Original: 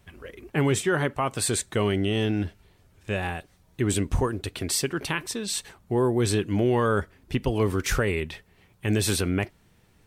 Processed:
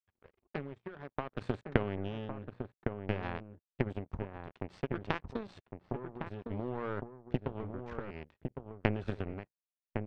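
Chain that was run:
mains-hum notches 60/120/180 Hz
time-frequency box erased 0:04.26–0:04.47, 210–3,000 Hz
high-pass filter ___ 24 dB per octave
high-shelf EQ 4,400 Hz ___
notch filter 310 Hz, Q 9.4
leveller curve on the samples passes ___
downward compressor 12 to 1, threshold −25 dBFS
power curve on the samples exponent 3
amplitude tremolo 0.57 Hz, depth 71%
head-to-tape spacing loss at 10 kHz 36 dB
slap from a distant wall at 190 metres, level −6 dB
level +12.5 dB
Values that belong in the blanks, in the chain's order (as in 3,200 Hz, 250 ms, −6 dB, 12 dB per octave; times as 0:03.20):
44 Hz, −11.5 dB, 1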